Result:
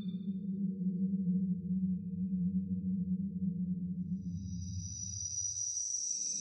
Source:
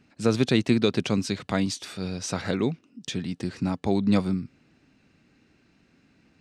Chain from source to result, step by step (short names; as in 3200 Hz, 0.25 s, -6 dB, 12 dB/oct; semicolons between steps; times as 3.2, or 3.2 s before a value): spectral contrast raised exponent 3.5; Paulstretch 21×, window 0.10 s, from 1.98; gain -4 dB